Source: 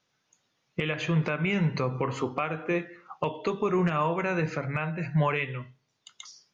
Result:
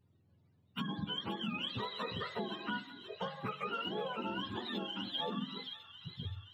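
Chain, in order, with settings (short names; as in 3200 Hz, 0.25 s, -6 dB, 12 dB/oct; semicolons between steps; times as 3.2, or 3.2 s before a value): spectrum mirrored in octaves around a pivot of 710 Hz; compressor 4:1, threshold -36 dBFS, peak gain reduction 11.5 dB; on a send: thin delay 0.525 s, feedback 62%, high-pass 2200 Hz, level -7 dB; on the sum: gain -1 dB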